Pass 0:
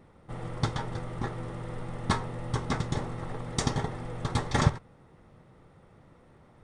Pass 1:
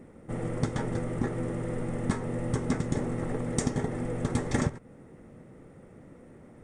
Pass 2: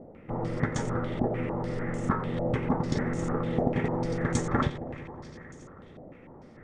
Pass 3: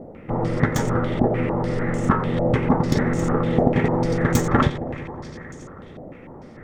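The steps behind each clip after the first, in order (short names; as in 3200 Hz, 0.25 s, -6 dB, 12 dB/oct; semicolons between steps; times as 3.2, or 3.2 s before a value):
graphic EQ 250/500/1000/2000/4000/8000 Hz +9/+5/-5/+4/-9/+8 dB; compressor 6:1, threshold -25 dBFS, peak gain reduction 12 dB; gain +1.5 dB
multi-head echo 90 ms, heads first and third, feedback 71%, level -15.5 dB; stepped low-pass 6.7 Hz 680–6700 Hz
tracing distortion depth 0.051 ms; gain +8.5 dB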